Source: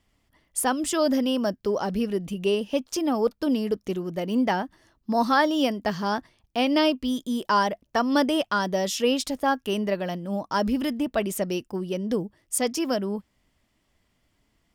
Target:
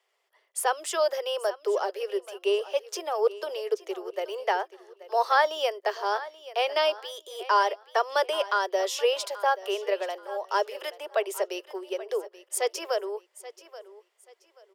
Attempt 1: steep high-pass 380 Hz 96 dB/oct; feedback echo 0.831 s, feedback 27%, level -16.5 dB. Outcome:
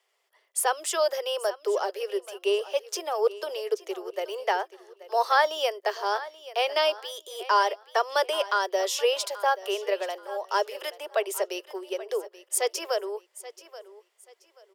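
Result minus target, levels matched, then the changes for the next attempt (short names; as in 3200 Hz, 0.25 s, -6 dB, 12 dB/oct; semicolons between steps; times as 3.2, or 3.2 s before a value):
8000 Hz band +3.5 dB
add after steep high-pass: high shelf 4400 Hz -5 dB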